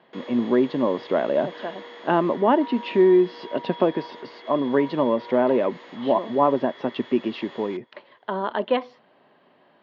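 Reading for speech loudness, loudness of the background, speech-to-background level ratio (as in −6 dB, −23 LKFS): −23.0 LKFS, −41.0 LKFS, 18.0 dB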